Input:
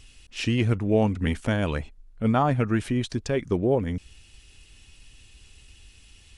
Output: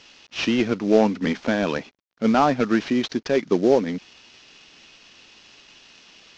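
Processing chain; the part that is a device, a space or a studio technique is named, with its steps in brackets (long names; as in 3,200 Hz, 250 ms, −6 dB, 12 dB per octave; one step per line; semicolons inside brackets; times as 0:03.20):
early wireless headset (high-pass filter 200 Hz 24 dB per octave; variable-slope delta modulation 32 kbit/s)
level +6 dB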